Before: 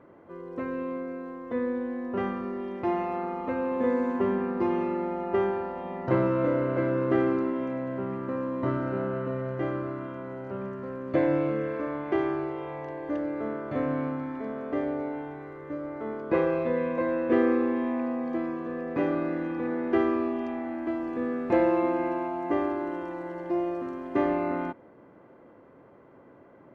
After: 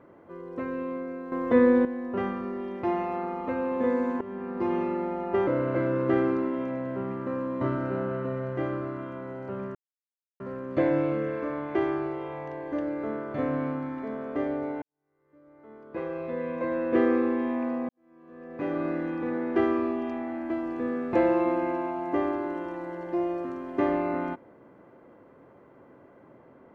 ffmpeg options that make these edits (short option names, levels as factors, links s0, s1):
-filter_complex "[0:a]asplit=8[s0][s1][s2][s3][s4][s5][s6][s7];[s0]atrim=end=1.322[s8];[s1]atrim=start=1.318:end=1.852,asetpts=PTS-STARTPTS,volume=3.16[s9];[s2]atrim=start=1.848:end=4.21,asetpts=PTS-STARTPTS,afade=t=out:st=2.358:d=0.004:c=hsin:silence=0.125893[s10];[s3]atrim=start=4.21:end=5.472,asetpts=PTS-STARTPTS,afade=t=in:d=0.54:silence=0.125893[s11];[s4]atrim=start=6.488:end=10.77,asetpts=PTS-STARTPTS,afade=t=out:st=4.278:d=0.004:c=hsin,apad=pad_dur=0.65[s12];[s5]atrim=start=10.77:end=15.19,asetpts=PTS-STARTPTS,afade=t=in:d=0.004:c=hsin,afade=t=out:st=4.416:d=0.004:c=hsin[s13];[s6]atrim=start=15.19:end=18.26,asetpts=PTS-STARTPTS,afade=t=in:d=2.07:c=qua,afade=t=out:st=3.066:d=0.004:c=hsin[s14];[s7]atrim=start=18.26,asetpts=PTS-STARTPTS,afade=t=in:d=0.98:c=qua[s15];[s8][s9]acrossfade=d=0.004:c1=hsin:c2=hsin[s16];[s10][s11]concat=n=2:v=0:a=1[s17];[s16][s17]acrossfade=d=0.004:c1=hsin:c2=hsin[s18];[s12][s13][s14][s15]concat=n=4:v=0:a=1[s19];[s18][s19]acrossfade=d=0.004:c1=hsin:c2=hsin"